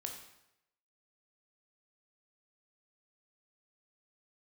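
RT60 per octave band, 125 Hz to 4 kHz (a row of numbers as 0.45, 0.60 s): 0.85, 0.75, 0.85, 0.85, 0.80, 0.75 s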